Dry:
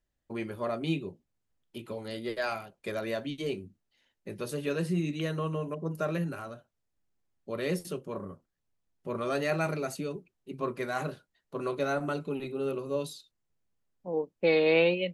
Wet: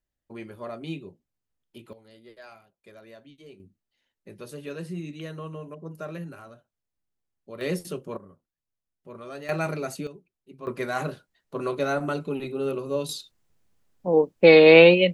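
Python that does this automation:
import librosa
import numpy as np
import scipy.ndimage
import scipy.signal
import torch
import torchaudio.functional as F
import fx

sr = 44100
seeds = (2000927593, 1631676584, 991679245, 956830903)

y = fx.gain(x, sr, db=fx.steps((0.0, -4.0), (1.93, -15.0), (3.6, -5.0), (7.61, 2.5), (8.17, -8.5), (9.49, 2.0), (10.07, -7.5), (10.67, 4.0), (13.09, 11.5)))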